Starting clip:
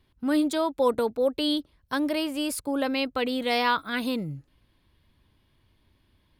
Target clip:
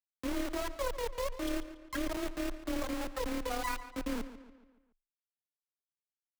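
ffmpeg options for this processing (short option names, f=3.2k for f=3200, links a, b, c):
-filter_complex "[0:a]afftfilt=real='re*gte(hypot(re,im),0.355)':imag='im*gte(hypot(re,im),0.355)':win_size=1024:overlap=0.75,lowpass=f=8.9k:w=0.5412,lowpass=f=8.9k:w=1.3066,acompressor=threshold=-31dB:ratio=12,tremolo=f=36:d=0.571,acrusher=bits=4:dc=4:mix=0:aa=0.000001,afreqshift=17,asplit=2[a][b];[b]adelay=142,lowpass=f=4.5k:p=1,volume=-13dB,asplit=2[c][d];[d]adelay=142,lowpass=f=4.5k:p=1,volume=0.49,asplit=2[e][f];[f]adelay=142,lowpass=f=4.5k:p=1,volume=0.49,asplit=2[g][h];[h]adelay=142,lowpass=f=4.5k:p=1,volume=0.49,asplit=2[i][j];[j]adelay=142,lowpass=f=4.5k:p=1,volume=0.49[k];[a][c][e][g][i][k]amix=inputs=6:normalize=0,volume=5dB"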